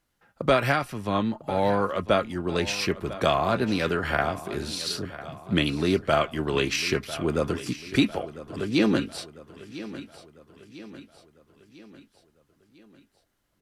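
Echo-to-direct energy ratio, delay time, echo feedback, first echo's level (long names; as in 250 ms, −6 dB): −14.5 dB, 999 ms, 50%, −15.5 dB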